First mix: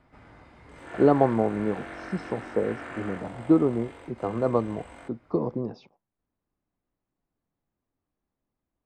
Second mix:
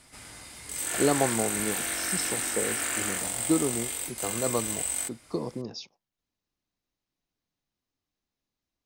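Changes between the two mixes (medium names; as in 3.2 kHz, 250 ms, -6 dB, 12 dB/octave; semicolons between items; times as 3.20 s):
speech -5.5 dB; master: remove low-pass 1.3 kHz 12 dB/octave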